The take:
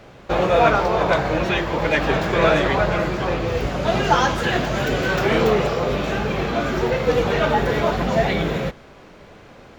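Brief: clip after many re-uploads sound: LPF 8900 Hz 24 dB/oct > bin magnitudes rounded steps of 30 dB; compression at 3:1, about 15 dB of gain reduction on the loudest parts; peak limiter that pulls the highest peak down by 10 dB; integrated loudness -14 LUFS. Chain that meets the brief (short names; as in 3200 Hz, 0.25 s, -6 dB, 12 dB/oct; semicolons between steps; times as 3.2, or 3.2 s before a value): compressor 3:1, threshold -33 dBFS; limiter -28 dBFS; LPF 8900 Hz 24 dB/oct; bin magnitudes rounded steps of 30 dB; gain +23.5 dB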